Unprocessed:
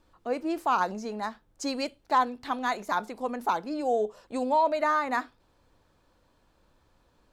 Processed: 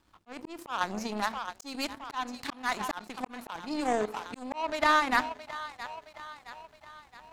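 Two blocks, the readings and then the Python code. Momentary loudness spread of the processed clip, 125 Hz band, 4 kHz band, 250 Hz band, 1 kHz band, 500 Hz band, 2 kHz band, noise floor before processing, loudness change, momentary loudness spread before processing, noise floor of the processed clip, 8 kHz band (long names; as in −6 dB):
20 LU, can't be measured, +3.5 dB, −3.0 dB, −4.0 dB, −6.0 dB, +2.5 dB, −67 dBFS, −3.0 dB, 10 LU, −60 dBFS, +1.5 dB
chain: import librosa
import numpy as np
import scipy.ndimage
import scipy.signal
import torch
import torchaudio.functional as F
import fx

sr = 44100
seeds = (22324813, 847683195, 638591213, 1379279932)

y = fx.highpass(x, sr, hz=63.0, slope=6)
y = fx.peak_eq(y, sr, hz=510.0, db=-11.0, octaves=0.63)
y = fx.echo_split(y, sr, split_hz=540.0, low_ms=89, high_ms=668, feedback_pct=52, wet_db=-15.0)
y = fx.auto_swell(y, sr, attack_ms=314.0)
y = fx.power_curve(y, sr, exponent=2.0)
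y = fx.env_flatten(y, sr, amount_pct=50)
y = y * librosa.db_to_amplitude(7.0)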